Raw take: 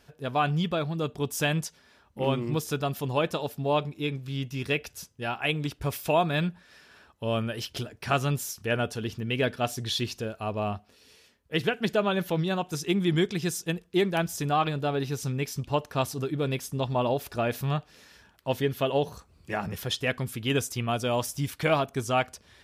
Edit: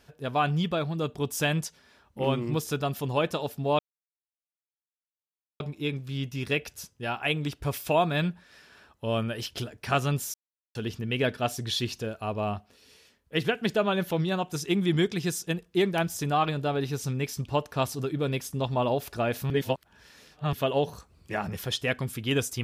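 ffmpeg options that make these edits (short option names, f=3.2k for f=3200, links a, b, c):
-filter_complex "[0:a]asplit=6[a][b][c][d][e][f];[a]atrim=end=3.79,asetpts=PTS-STARTPTS,afade=t=out:st=3.786:d=0.004:c=hsin,apad=pad_dur=1.81[g];[b]atrim=start=3.79:end=8.53,asetpts=PTS-STARTPTS,afade=t=in:d=0.004:c=hsin,afade=t=out:st=4.736:d=0.004:c=hsin[h];[c]atrim=start=8.53:end=8.94,asetpts=PTS-STARTPTS,volume=0[i];[d]atrim=start=8.94:end=17.692,asetpts=PTS-STARTPTS,afade=t=in:d=0.004:c=hsin[j];[e]atrim=start=17.688:end=18.722,asetpts=PTS-STARTPTS,areverse[k];[f]atrim=start=18.718[l];[g][h][i][j]concat=n=4:v=0:a=1[m];[m][k]acrossfade=d=0.004:c1=hsin:c2=hsin[n];[n][l]acrossfade=d=0.004:c1=hsin:c2=hsin"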